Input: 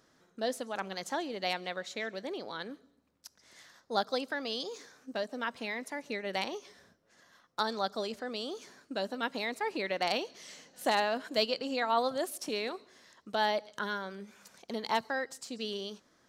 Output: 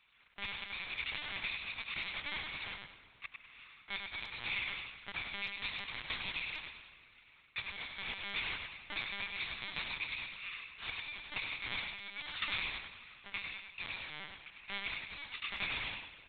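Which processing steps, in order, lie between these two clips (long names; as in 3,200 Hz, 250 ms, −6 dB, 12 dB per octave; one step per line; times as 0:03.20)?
samples in bit-reversed order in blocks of 64 samples
low-pass that shuts in the quiet parts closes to 2,700 Hz, open at −27 dBFS
high-shelf EQ 2,200 Hz +7.5 dB
downward compressor 5 to 1, threshold −36 dBFS, peak gain reduction 16.5 dB
bit reduction 11 bits
pitch shifter −2.5 semitones
resonant band-pass 2,800 Hz, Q 0.91
repeating echo 102 ms, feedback 33%, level −5 dB
convolution reverb RT60 3.6 s, pre-delay 116 ms, DRR 15.5 dB
linear-prediction vocoder at 8 kHz pitch kept
level +9 dB
AAC 160 kbit/s 44,100 Hz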